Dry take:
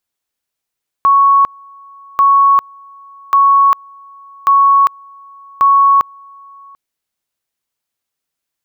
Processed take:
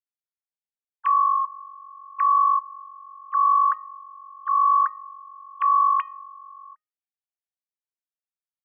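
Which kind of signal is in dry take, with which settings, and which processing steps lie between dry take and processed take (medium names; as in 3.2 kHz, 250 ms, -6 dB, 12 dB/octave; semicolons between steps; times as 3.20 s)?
two-level tone 1.11 kHz -5.5 dBFS, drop 29.5 dB, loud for 0.40 s, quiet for 0.74 s, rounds 5
formants replaced by sine waves; transient shaper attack -2 dB, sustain +4 dB; feedback comb 620 Hz, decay 0.34 s, mix 70%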